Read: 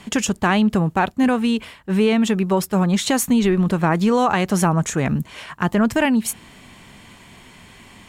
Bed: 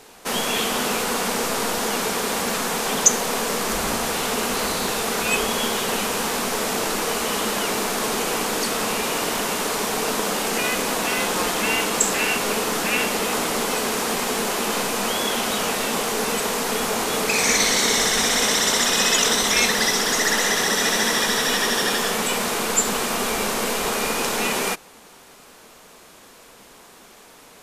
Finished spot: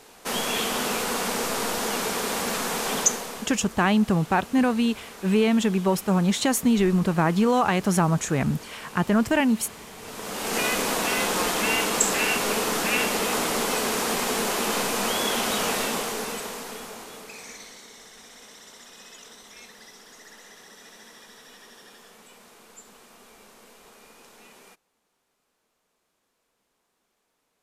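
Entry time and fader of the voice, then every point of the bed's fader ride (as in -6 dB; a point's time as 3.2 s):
3.35 s, -3.5 dB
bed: 2.99 s -3.5 dB
3.62 s -20 dB
9.96 s -20 dB
10.58 s -2 dB
15.79 s -2 dB
17.89 s -28 dB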